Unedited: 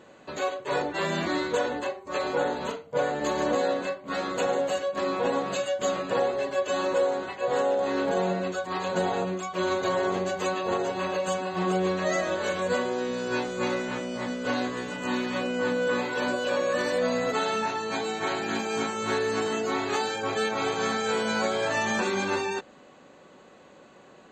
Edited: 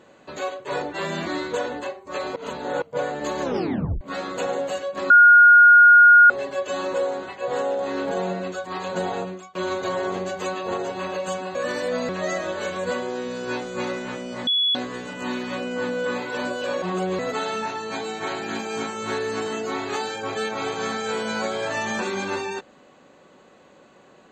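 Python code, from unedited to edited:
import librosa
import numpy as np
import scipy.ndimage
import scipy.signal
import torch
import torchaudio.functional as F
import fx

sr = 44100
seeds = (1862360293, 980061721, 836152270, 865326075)

y = fx.edit(x, sr, fx.reverse_span(start_s=2.36, length_s=0.46),
    fx.tape_stop(start_s=3.42, length_s=0.59),
    fx.bleep(start_s=5.1, length_s=1.2, hz=1430.0, db=-7.5),
    fx.fade_out_to(start_s=9.19, length_s=0.36, floor_db=-21.0),
    fx.swap(start_s=11.55, length_s=0.37, other_s=16.65, other_length_s=0.54),
    fx.bleep(start_s=14.3, length_s=0.28, hz=3390.0, db=-17.5), tone=tone)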